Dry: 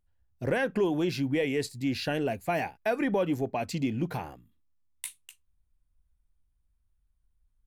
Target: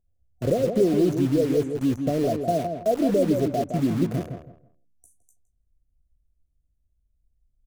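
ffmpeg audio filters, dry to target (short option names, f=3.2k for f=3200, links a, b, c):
-filter_complex "[0:a]aemphasis=mode=reproduction:type=cd,acrossover=split=4200[a][b];[b]acompressor=threshold=-52dB:ratio=4:attack=1:release=60[c];[a][c]amix=inputs=2:normalize=0,afftfilt=real='re*(1-between(b*sr/4096,740,5800))':imag='im*(1-between(b*sr/4096,740,5800))':win_size=4096:overlap=0.75,asplit=2[d][e];[e]acrusher=bits=5:mix=0:aa=0.000001,volume=-4dB[f];[d][f]amix=inputs=2:normalize=0,asplit=2[g][h];[h]adelay=163,lowpass=f=1.7k:p=1,volume=-6dB,asplit=2[i][j];[j]adelay=163,lowpass=f=1.7k:p=1,volume=0.25,asplit=2[k][l];[l]adelay=163,lowpass=f=1.7k:p=1,volume=0.25[m];[g][i][k][m]amix=inputs=4:normalize=0,volume=1.5dB"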